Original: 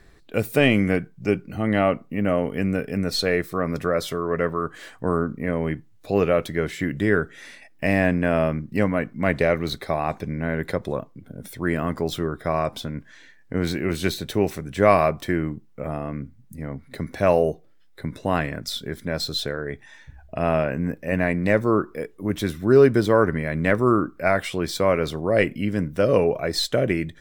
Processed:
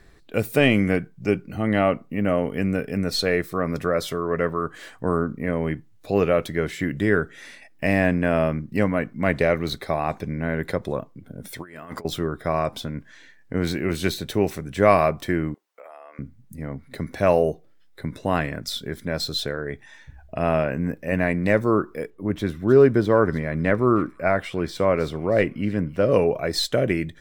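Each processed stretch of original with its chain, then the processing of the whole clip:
0:11.53–0:12.05: low-shelf EQ 400 Hz −11 dB + compressor whose output falls as the input rises −35 dBFS, ratio −0.5
0:15.54–0:16.19: high-pass filter 560 Hz 24 dB per octave + downward compressor 4 to 1, threshold −41 dBFS
0:22.10–0:26.12: high-shelf EQ 3,600 Hz −11.5 dB + delay with a high-pass on its return 315 ms, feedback 46%, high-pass 4,300 Hz, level −8 dB
whole clip: no processing

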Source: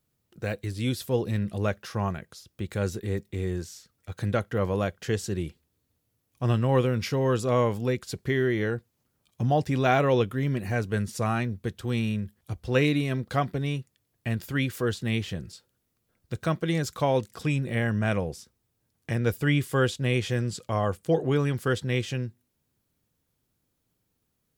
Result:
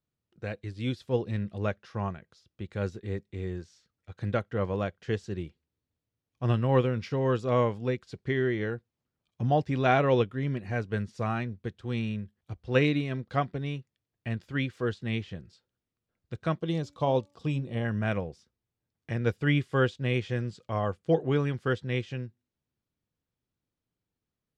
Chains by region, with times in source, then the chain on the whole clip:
0:16.58–0:17.85: flat-topped bell 1,800 Hz −9 dB 1 octave + hum removal 287.1 Hz, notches 9
whole clip: low-pass filter 4,600 Hz 12 dB per octave; expander for the loud parts 1.5 to 1, over −39 dBFS

